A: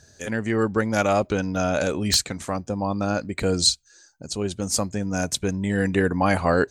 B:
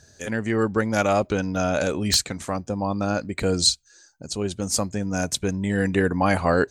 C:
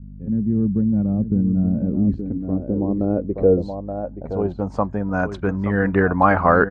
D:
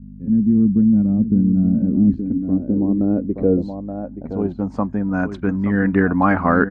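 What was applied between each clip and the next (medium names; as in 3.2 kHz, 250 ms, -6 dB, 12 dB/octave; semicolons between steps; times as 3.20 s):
no audible change
echo from a far wall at 150 m, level -9 dB; hum 50 Hz, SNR 18 dB; low-pass sweep 200 Hz -> 1.3 kHz, 1.69–5.33 s; trim +2.5 dB
graphic EQ 250/500/2000 Hz +11/-3/+4 dB; trim -3.5 dB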